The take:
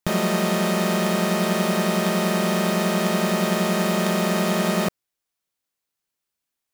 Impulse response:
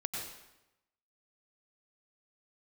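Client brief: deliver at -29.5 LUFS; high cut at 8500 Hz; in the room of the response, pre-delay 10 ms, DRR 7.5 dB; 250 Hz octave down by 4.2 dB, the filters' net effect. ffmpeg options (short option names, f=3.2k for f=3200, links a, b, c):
-filter_complex "[0:a]lowpass=8.5k,equalizer=f=250:t=o:g=-6.5,asplit=2[a][b];[1:a]atrim=start_sample=2205,adelay=10[c];[b][c]afir=irnorm=-1:irlink=0,volume=-9.5dB[d];[a][d]amix=inputs=2:normalize=0,volume=-7dB"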